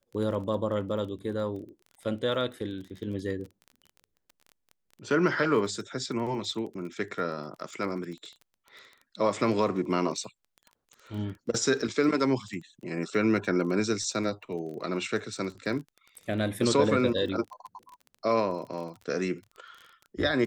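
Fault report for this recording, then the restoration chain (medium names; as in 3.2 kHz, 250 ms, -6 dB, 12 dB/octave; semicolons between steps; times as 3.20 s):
crackle 20 per s -38 dBFS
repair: de-click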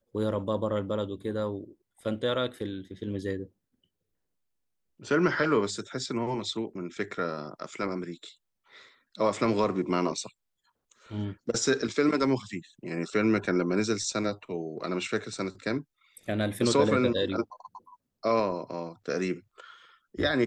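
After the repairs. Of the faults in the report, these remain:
nothing left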